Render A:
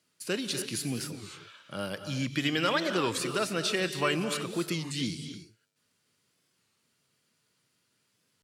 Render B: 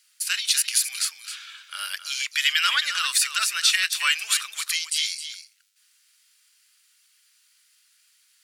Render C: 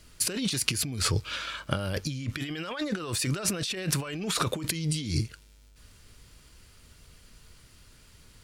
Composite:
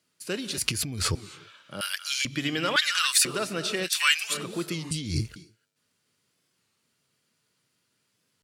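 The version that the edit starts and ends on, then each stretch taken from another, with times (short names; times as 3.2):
A
0.58–1.15 from C
1.81–2.25 from B
2.76–3.25 from B
3.86–4.32 from B, crossfade 0.06 s
4.91–5.36 from C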